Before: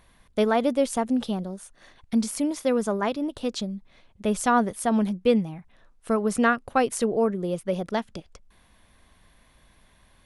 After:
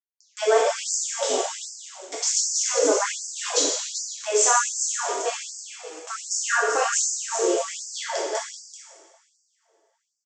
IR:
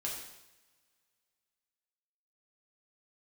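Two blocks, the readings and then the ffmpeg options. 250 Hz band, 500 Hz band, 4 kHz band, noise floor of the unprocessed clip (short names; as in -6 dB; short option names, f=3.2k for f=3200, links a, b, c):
-13.5 dB, +0.5 dB, +10.0 dB, -60 dBFS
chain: -filter_complex "[0:a]lowshelf=f=67:g=6.5,alimiter=limit=-18dB:level=0:latency=1:release=320,aresample=16000,aeval=exprs='val(0)*gte(abs(val(0)),0.00891)':c=same,aresample=44100,aexciter=amount=8.2:drive=2.5:freq=5.7k,aecho=1:1:386:0.398[a];[1:a]atrim=start_sample=2205,asetrate=30870,aresample=44100[b];[a][b]afir=irnorm=-1:irlink=0,afftfilt=real='re*gte(b*sr/1024,280*pow(4600/280,0.5+0.5*sin(2*PI*1.3*pts/sr)))':imag='im*gte(b*sr/1024,280*pow(4600/280,0.5+0.5*sin(2*PI*1.3*pts/sr)))':win_size=1024:overlap=0.75,volume=6dB"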